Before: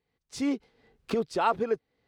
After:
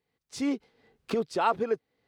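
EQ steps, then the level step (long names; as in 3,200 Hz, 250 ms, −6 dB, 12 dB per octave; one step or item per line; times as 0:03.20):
high-pass filter 97 Hz 6 dB per octave
0.0 dB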